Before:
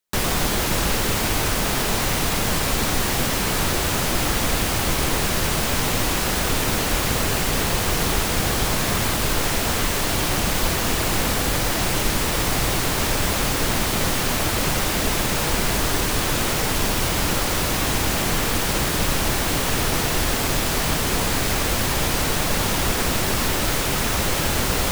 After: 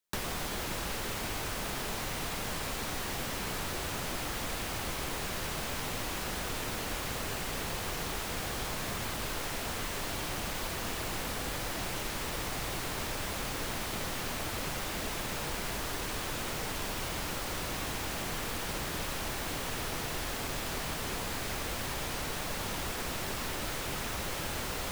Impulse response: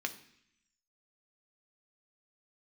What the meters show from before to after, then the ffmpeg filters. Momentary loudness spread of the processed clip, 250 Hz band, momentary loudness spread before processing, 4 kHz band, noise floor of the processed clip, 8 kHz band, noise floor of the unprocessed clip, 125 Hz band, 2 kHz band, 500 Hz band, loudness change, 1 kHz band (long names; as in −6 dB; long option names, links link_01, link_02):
0 LU, −15.0 dB, 0 LU, −13.5 dB, −37 dBFS, −15.0 dB, −23 dBFS, −15.5 dB, −13.0 dB, −13.5 dB, −14.0 dB, −13.0 dB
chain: -filter_complex "[0:a]acrossover=split=420|4200[link_01][link_02][link_03];[link_01]acompressor=threshold=-35dB:ratio=4[link_04];[link_02]acompressor=threshold=-34dB:ratio=4[link_05];[link_03]acompressor=threshold=-38dB:ratio=4[link_06];[link_04][link_05][link_06]amix=inputs=3:normalize=0,volume=-4.5dB"